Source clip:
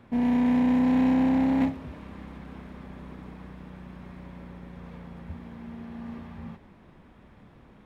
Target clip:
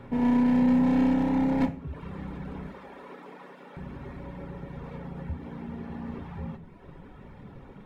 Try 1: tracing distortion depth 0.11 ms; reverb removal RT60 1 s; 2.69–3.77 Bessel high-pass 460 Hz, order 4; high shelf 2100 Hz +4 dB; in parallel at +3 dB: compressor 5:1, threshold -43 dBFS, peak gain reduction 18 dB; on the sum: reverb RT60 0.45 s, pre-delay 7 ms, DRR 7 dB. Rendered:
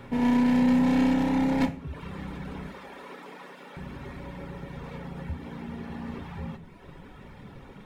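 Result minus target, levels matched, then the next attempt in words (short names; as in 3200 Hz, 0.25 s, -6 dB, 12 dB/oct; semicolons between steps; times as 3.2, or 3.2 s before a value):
4000 Hz band +7.5 dB
tracing distortion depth 0.11 ms; reverb removal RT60 1 s; 2.69–3.77 Bessel high-pass 460 Hz, order 4; high shelf 2100 Hz -6.5 dB; in parallel at +3 dB: compressor 5:1, threshold -43 dBFS, peak gain reduction 17.5 dB; on the sum: reverb RT60 0.45 s, pre-delay 7 ms, DRR 7 dB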